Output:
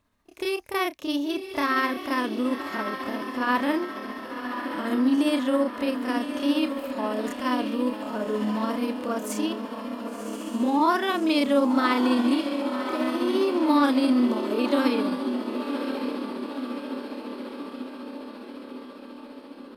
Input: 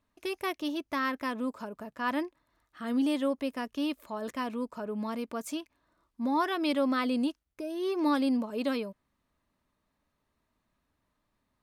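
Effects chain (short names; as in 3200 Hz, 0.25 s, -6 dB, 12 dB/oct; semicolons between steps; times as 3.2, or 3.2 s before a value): diffused feedback echo 0.641 s, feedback 62%, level -7 dB; granular stretch 1.7×, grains 0.137 s; gain +7 dB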